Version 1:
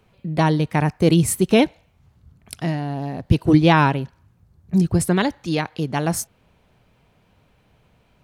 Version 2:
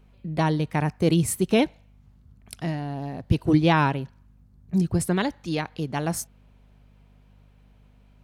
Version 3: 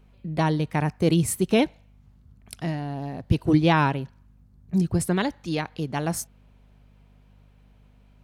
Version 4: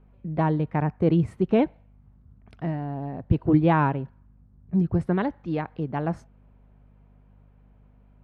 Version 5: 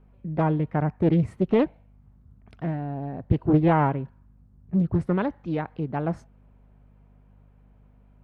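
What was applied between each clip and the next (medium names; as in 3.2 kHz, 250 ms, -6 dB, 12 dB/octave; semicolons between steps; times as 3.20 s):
hum 50 Hz, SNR 29 dB; trim -5 dB
no audible change
low-pass 1.5 kHz 12 dB/octave
loudspeaker Doppler distortion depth 0.76 ms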